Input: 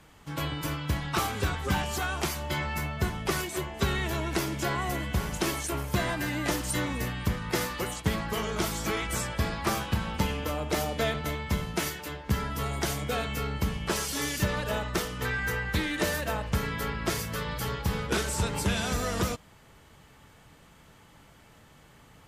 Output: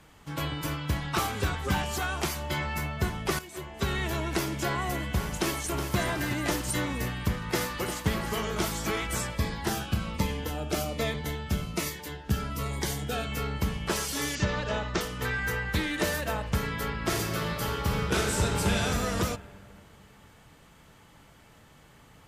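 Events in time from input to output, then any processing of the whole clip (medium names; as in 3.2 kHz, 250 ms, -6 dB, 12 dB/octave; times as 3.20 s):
3.39–4.03 s: fade in, from -13 dB
5.28–5.96 s: echo throw 370 ms, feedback 50%, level -8.5 dB
7.39–8.04 s: echo throw 350 ms, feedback 55%, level -9 dB
9.30–13.32 s: Shepard-style phaser falling 1.2 Hz
14.35–15.01 s: steep low-pass 7 kHz
17.00–18.78 s: reverb throw, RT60 2.3 s, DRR 1.5 dB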